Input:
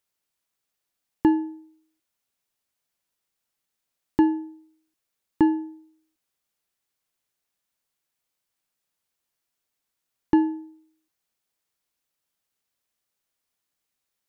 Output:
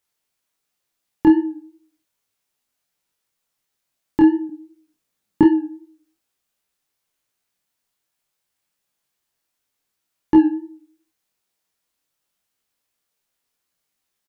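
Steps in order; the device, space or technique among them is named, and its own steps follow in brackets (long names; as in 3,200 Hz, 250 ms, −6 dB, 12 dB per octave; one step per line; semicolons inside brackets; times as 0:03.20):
double-tracked vocal (double-tracking delay 28 ms −4.5 dB; chorus effect 2.7 Hz, delay 16 ms, depth 5.8 ms)
0:04.49–0:05.44: parametric band 200 Hz +9.5 dB 1.2 octaves
level +6 dB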